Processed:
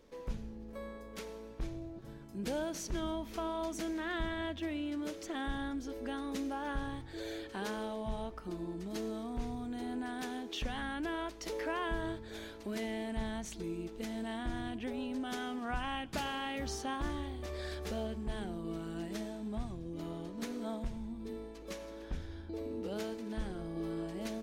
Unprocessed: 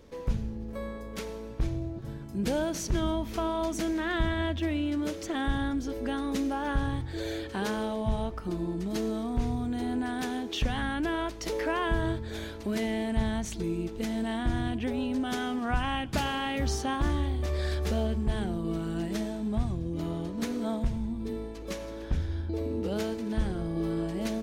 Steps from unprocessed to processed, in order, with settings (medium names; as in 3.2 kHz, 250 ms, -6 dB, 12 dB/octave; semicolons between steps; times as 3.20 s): peaking EQ 93 Hz -9.5 dB 1.5 oct; trim -6.5 dB